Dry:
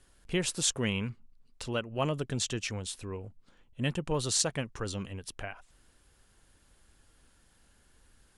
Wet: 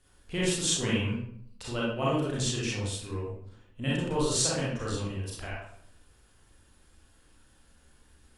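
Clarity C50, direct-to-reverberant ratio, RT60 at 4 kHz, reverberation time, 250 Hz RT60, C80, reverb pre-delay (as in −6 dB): −0.5 dB, −6.5 dB, 0.45 s, 0.65 s, 0.85 s, 5.0 dB, 31 ms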